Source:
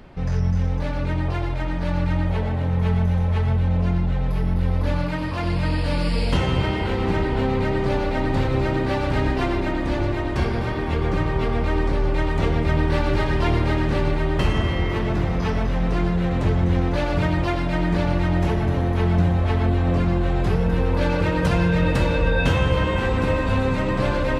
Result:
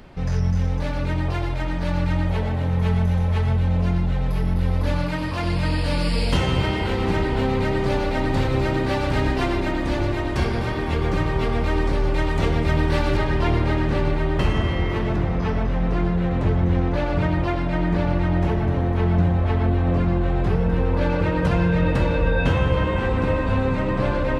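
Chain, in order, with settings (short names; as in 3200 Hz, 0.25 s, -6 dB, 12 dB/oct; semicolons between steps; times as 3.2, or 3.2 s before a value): high shelf 3700 Hz +5 dB, from 13.17 s -3.5 dB, from 15.16 s -9.5 dB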